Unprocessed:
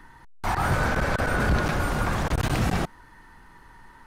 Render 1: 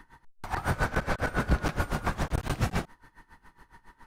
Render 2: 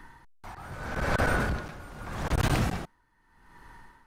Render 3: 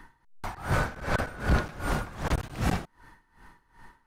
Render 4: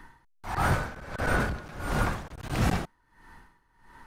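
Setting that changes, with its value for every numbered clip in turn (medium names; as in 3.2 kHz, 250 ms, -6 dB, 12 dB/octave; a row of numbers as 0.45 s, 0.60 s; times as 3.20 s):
logarithmic tremolo, rate: 7.2 Hz, 0.81 Hz, 2.6 Hz, 1.5 Hz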